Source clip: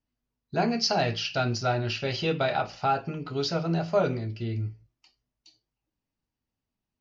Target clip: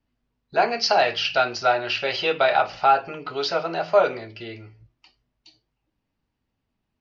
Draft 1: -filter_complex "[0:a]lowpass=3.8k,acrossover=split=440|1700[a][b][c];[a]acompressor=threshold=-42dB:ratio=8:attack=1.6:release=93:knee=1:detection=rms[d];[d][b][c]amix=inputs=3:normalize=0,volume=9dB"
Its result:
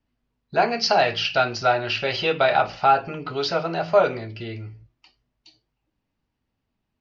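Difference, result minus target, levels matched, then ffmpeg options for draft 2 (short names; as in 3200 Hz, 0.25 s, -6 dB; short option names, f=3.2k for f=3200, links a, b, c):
compressor: peak gain reduction -9 dB
-filter_complex "[0:a]lowpass=3.8k,acrossover=split=440|1700[a][b][c];[a]acompressor=threshold=-52.5dB:ratio=8:attack=1.6:release=93:knee=1:detection=rms[d];[d][b][c]amix=inputs=3:normalize=0,volume=9dB"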